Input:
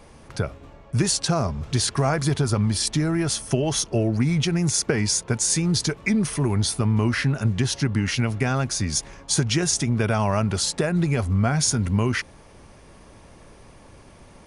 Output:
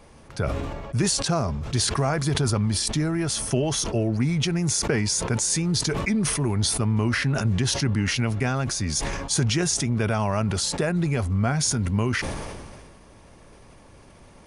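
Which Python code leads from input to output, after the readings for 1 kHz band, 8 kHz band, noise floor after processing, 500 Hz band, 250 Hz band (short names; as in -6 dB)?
-1.0 dB, -1.0 dB, -50 dBFS, -1.0 dB, -1.5 dB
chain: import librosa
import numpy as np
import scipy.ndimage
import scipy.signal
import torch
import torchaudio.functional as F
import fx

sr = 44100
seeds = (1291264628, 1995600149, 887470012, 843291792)

y = fx.sustainer(x, sr, db_per_s=30.0)
y = F.gain(torch.from_numpy(y), -2.5).numpy()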